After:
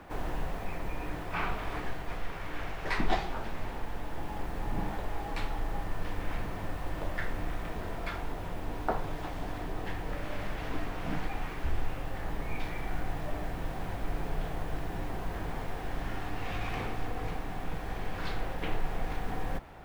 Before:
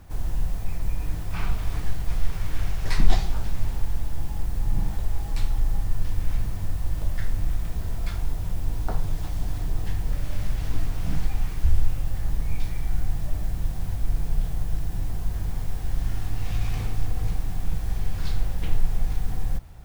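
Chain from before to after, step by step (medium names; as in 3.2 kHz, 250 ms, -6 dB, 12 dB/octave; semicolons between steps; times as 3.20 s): three-band isolator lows -18 dB, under 240 Hz, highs -16 dB, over 3 kHz; gain riding 2 s; trim +5 dB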